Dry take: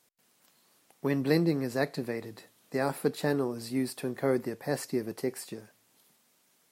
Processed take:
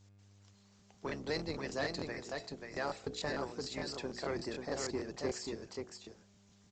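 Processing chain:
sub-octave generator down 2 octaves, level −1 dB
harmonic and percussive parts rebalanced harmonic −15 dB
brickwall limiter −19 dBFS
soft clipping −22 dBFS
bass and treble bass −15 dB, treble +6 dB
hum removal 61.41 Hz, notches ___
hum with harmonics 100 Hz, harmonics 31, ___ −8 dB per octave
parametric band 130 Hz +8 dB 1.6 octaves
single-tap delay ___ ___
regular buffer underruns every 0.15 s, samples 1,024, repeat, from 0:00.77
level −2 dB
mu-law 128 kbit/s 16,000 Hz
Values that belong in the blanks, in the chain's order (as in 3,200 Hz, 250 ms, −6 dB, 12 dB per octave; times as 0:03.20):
13, −67 dBFS, 535 ms, −4.5 dB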